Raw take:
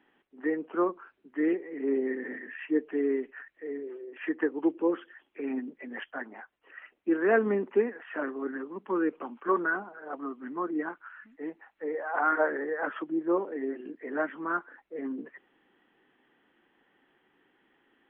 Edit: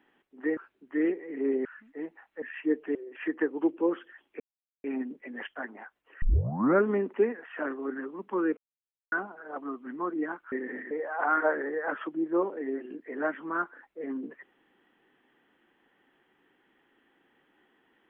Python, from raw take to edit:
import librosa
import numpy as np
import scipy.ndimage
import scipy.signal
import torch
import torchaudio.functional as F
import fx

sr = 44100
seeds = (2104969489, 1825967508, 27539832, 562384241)

y = fx.edit(x, sr, fx.cut(start_s=0.57, length_s=0.43),
    fx.swap(start_s=2.08, length_s=0.39, other_s=11.09, other_length_s=0.77),
    fx.cut(start_s=3.0, length_s=0.96),
    fx.insert_silence(at_s=5.41, length_s=0.44),
    fx.tape_start(start_s=6.79, length_s=0.64),
    fx.silence(start_s=9.14, length_s=0.55), tone=tone)